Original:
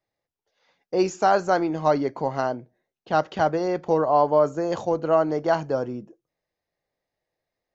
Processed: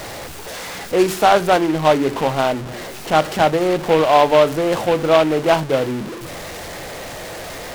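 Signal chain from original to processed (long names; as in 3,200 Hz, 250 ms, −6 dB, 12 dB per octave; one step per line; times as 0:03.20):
converter with a step at zero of −29.5 dBFS
hum removal 47.9 Hz, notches 9
short delay modulated by noise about 1,900 Hz, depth 0.051 ms
level +5.5 dB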